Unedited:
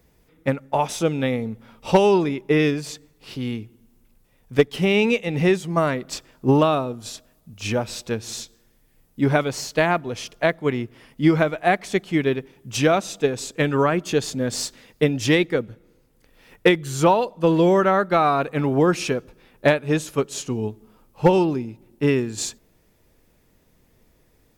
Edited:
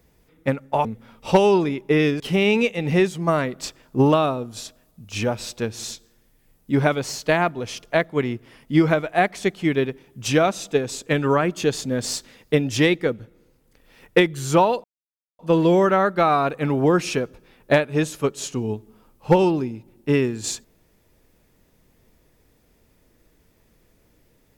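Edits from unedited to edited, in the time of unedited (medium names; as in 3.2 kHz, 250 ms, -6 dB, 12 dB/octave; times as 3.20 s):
0.85–1.45 s: delete
2.80–4.69 s: delete
17.33 s: insert silence 0.55 s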